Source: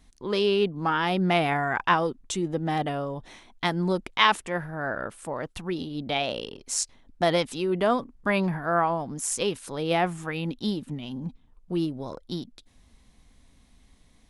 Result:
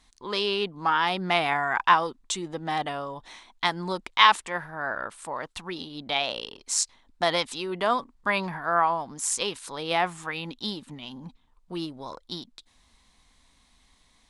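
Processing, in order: ten-band graphic EQ 125 Hz -3 dB, 1 kHz +10 dB, 2 kHz +5 dB, 4 kHz +9 dB, 8 kHz +8 dB; trim -7 dB

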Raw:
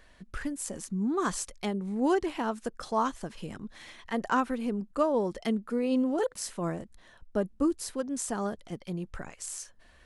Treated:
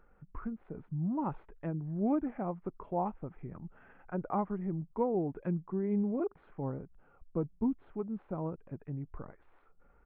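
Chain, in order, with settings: Gaussian low-pass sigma 4.3 samples; pitch shift -4 st; trim -4 dB

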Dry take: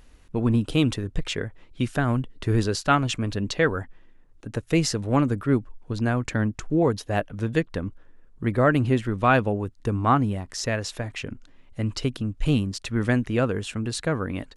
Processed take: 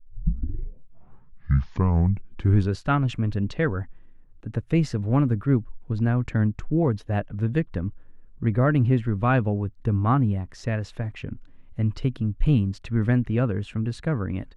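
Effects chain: tape start-up on the opening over 2.80 s; tone controls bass +9 dB, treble -13 dB; trim -4.5 dB

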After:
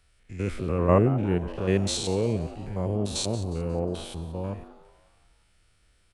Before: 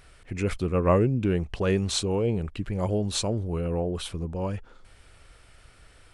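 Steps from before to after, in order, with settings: spectrogram pixelated in time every 100 ms; frequency-shifting echo 180 ms, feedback 54%, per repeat +150 Hz, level -15 dB; three bands expanded up and down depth 40%

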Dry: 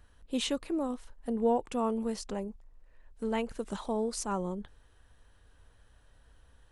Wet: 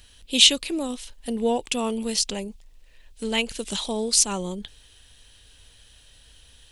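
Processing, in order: resonant high shelf 2 kHz +14 dB, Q 1.5; trim +4.5 dB

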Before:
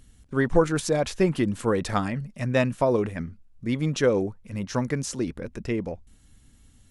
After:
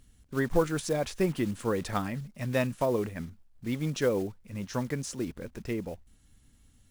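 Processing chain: block-companded coder 5-bit; trim -5.5 dB

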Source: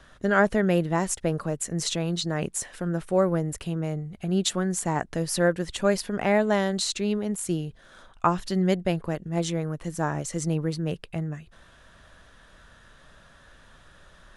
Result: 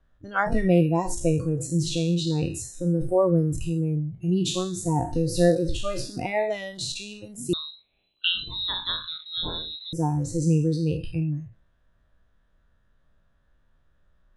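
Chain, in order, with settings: spectral sustain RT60 0.68 s; spectral noise reduction 22 dB; 7.53–9.93 s: frequency inversion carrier 4 kHz; tilt EQ -2.5 dB/octave

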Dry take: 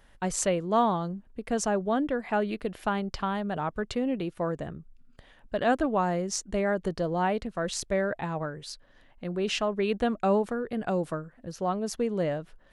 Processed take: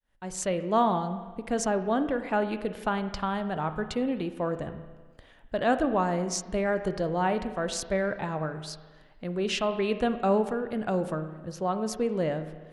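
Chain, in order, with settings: fade-in on the opening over 0.67 s; spring tank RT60 1.4 s, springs 32/51 ms, chirp 55 ms, DRR 9.5 dB

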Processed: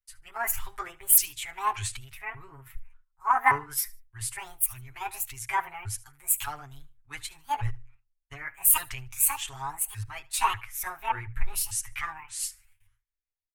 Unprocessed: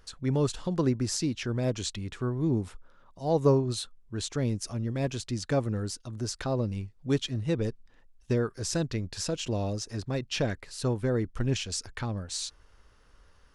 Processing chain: sawtooth pitch modulation +10.5 st, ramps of 585 ms; on a send: feedback delay 75 ms, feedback 31%, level -20.5 dB; on the sum: gate with hold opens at -47 dBFS; hum notches 60/120 Hz; comb 7.4 ms, depth 94%; in parallel at -6 dB: saturation -19.5 dBFS, distortion -13 dB; on the sum: peaking EQ 230 Hz -9.5 dB 1.3 oct; vibrato 0.96 Hz 57 cents; FFT filter 110 Hz 0 dB, 160 Hz -28 dB, 240 Hz -24 dB, 370 Hz -17 dB, 530 Hz -29 dB, 880 Hz -1 dB, 1.5 kHz +2 dB, 2.3 kHz +5 dB, 4.8 kHz -11 dB, 11 kHz +7 dB; three bands expanded up and down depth 70%; trim -1 dB

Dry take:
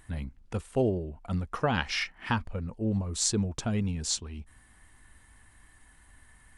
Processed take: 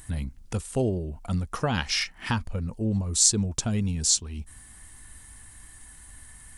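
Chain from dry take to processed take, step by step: tone controls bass +4 dB, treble +12 dB; in parallel at +1.5 dB: compression, threshold -34 dBFS, peak gain reduction 19 dB; on the sum: trim -3 dB

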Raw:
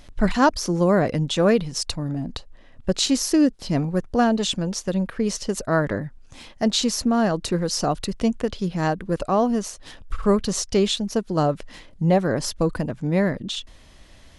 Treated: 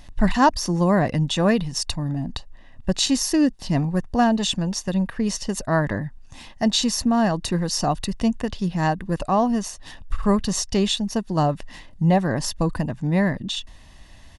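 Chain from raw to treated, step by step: comb 1.1 ms, depth 46%

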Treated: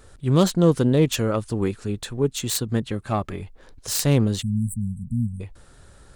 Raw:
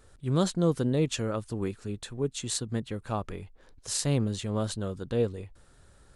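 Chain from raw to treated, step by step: self-modulated delay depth 0.087 ms; 2.92–3.41 s: comb of notches 480 Hz; 4.42–5.40 s: spectral selection erased 250–7600 Hz; trim +8 dB

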